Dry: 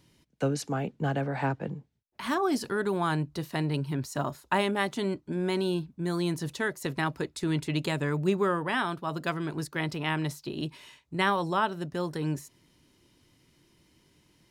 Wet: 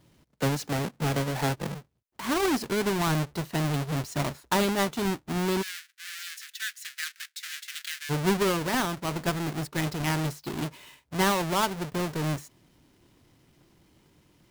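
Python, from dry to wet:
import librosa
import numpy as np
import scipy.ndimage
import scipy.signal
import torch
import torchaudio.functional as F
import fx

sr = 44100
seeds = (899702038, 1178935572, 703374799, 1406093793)

y = fx.halfwave_hold(x, sr)
y = fx.ellip_highpass(y, sr, hz=1600.0, order=4, stop_db=60, at=(5.61, 8.09), fade=0.02)
y = y * 10.0 ** (-2.5 / 20.0)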